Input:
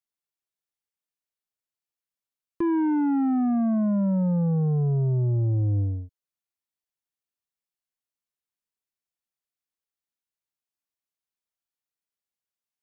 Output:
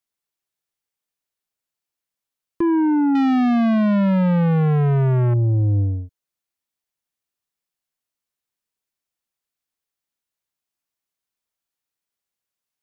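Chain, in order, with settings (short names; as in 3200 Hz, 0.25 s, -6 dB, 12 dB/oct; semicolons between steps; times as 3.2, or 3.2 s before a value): 3.15–5.34 sample leveller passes 2; gain +5.5 dB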